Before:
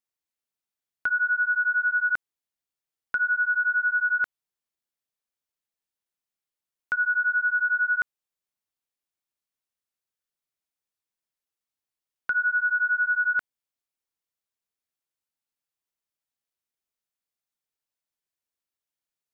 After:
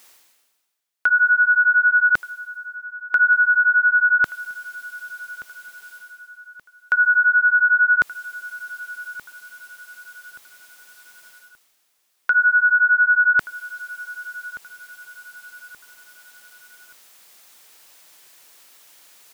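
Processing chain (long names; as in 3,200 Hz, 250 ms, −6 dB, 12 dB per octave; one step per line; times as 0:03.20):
high-pass filter 530 Hz 6 dB per octave
reversed playback
upward compression, threshold −34 dBFS
reversed playback
repeating echo 1,177 ms, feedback 38%, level −18 dB
level +8.5 dB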